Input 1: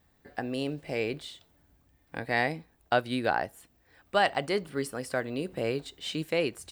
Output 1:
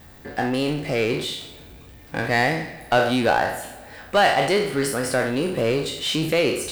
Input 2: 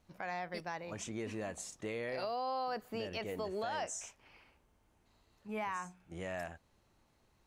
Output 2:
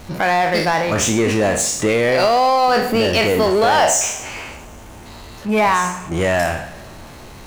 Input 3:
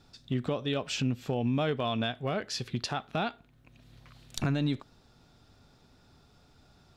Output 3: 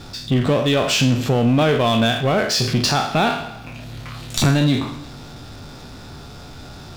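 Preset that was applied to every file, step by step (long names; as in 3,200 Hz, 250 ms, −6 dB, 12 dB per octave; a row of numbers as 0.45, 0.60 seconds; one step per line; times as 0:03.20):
peak hold with a decay on every bin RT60 0.47 s
coupled-rooms reverb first 0.79 s, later 2.7 s, from −18 dB, DRR 14 dB
power curve on the samples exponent 0.7
normalise the peak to −6 dBFS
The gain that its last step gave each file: +3.0, +20.0, +9.0 decibels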